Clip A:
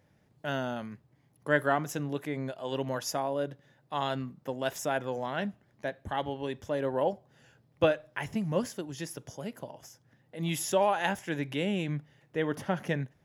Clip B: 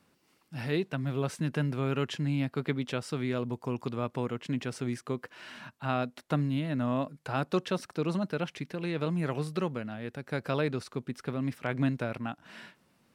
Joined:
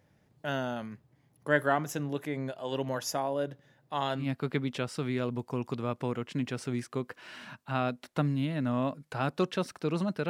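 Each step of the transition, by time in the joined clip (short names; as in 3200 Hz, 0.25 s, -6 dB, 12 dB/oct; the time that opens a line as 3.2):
clip A
4.23 switch to clip B from 2.37 s, crossfade 0.14 s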